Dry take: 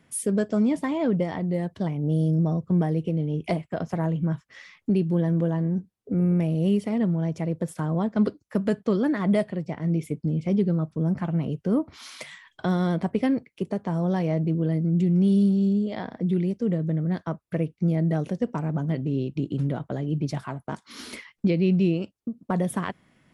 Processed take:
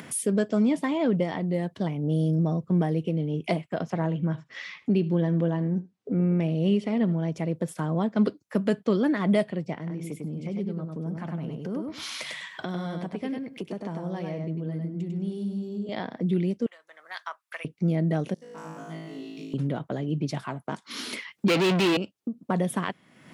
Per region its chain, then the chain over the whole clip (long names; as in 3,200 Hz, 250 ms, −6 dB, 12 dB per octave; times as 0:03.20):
0:03.90–0:07.28: low-pass filter 5,900 Hz + single-tap delay 77 ms −19 dB
0:09.76–0:15.89: downward compressor 2 to 1, threshold −36 dBFS + repeating echo 99 ms, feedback 15%, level −4 dB
0:16.66–0:17.65: high-pass filter 1,000 Hz 24 dB per octave + multiband upward and downward expander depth 40%
0:18.34–0:19.54: RIAA equalisation recording + tuned comb filter 54 Hz, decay 1.2 s, mix 100% + hum removal 59.99 Hz, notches 16
0:21.48–0:21.97: high-pass filter 340 Hz 6 dB per octave + mid-hump overdrive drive 34 dB, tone 4,400 Hz, clips at −16 dBFS
whole clip: high-pass filter 140 Hz; dynamic equaliser 3,100 Hz, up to +4 dB, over −51 dBFS, Q 1.3; upward compression, threshold −29 dBFS